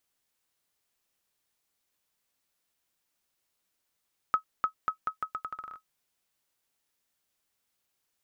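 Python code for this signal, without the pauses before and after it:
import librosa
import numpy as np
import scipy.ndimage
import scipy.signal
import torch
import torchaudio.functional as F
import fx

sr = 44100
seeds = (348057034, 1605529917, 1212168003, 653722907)

y = fx.bouncing_ball(sr, first_gap_s=0.3, ratio=0.8, hz=1280.0, decay_ms=99.0, level_db=-14.5)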